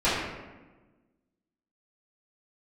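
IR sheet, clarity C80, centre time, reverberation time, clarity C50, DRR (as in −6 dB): 2.5 dB, 78 ms, 1.2 s, 0.0 dB, −14.5 dB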